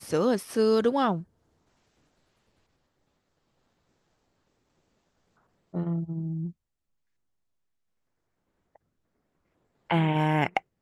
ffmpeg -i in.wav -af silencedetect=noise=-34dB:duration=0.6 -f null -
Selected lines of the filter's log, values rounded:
silence_start: 1.21
silence_end: 5.74 | silence_duration: 4.53
silence_start: 6.49
silence_end: 9.90 | silence_duration: 3.41